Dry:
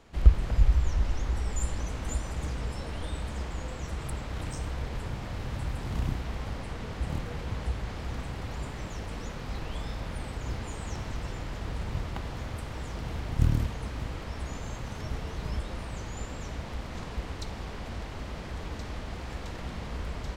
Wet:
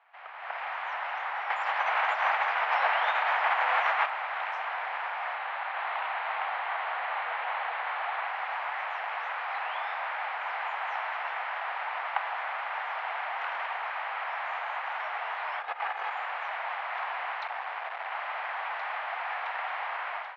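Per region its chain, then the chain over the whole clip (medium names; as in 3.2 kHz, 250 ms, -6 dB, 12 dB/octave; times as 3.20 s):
1.50–4.06 s: careless resampling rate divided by 3×, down none, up filtered + level flattener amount 70%
5.35–8.27 s: Chebyshev low-pass 4.3 kHz, order 3 + delay 393 ms -3.5 dB
15.61–16.11 s: comb filter that takes the minimum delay 2.4 ms + bass shelf 500 Hz +10 dB + compressor with a negative ratio -30 dBFS, ratio -0.5
17.47–18.12 s: peaking EQ 340 Hz +4.5 dB 1.7 oct + hard clipper -37.5 dBFS
whole clip: elliptic high-pass 740 Hz, stop band 70 dB; level rider gain up to 13.5 dB; low-pass 2.4 kHz 24 dB/octave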